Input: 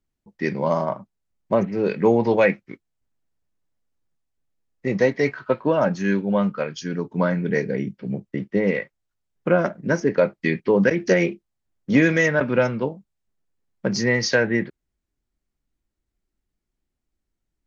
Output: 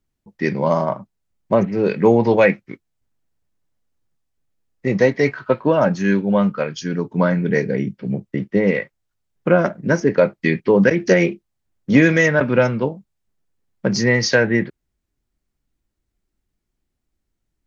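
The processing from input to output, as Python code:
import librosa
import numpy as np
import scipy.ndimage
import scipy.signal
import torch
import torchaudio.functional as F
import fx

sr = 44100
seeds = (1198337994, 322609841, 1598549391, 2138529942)

y = fx.peak_eq(x, sr, hz=110.0, db=2.5, octaves=1.2)
y = F.gain(torch.from_numpy(y), 3.5).numpy()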